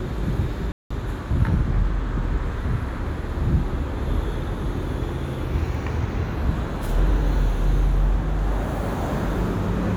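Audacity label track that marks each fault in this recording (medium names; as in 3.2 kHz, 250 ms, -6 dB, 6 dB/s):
0.720000	0.910000	dropout 185 ms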